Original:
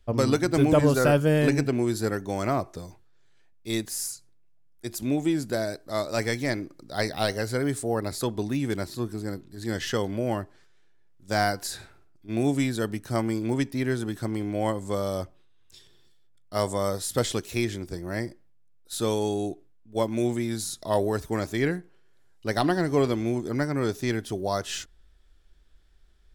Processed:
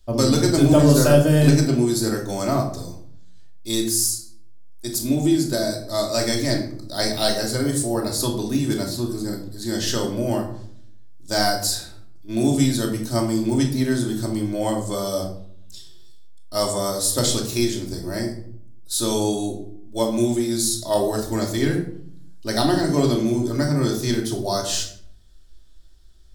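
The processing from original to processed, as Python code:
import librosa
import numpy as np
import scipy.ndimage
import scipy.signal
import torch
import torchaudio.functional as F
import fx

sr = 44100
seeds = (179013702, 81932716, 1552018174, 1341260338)

y = fx.curve_eq(x, sr, hz=(910.0, 2300.0, 4400.0), db=(0, -4, 9))
y = fx.room_shoebox(y, sr, seeds[0], volume_m3=970.0, walls='furnished', distance_m=2.7)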